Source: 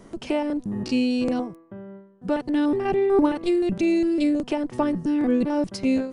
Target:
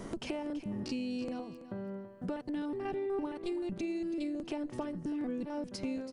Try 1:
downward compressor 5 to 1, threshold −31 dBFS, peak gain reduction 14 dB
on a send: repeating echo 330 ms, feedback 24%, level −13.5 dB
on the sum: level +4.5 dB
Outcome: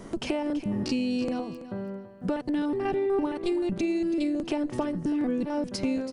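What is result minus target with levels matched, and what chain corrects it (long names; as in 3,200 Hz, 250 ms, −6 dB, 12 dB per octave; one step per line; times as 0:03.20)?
downward compressor: peak gain reduction −9 dB
downward compressor 5 to 1, threshold −42 dBFS, peak gain reduction 23 dB
on a send: repeating echo 330 ms, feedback 24%, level −13.5 dB
on the sum: level +4.5 dB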